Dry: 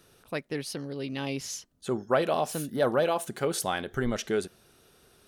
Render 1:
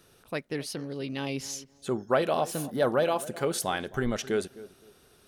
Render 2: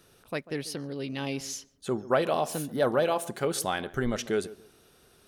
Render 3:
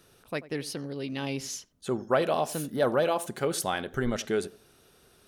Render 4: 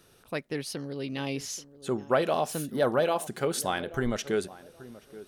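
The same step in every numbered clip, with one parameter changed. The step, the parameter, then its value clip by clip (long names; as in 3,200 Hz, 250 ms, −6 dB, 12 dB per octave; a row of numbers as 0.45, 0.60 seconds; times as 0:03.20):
tape delay, delay time: 262, 141, 87, 829 milliseconds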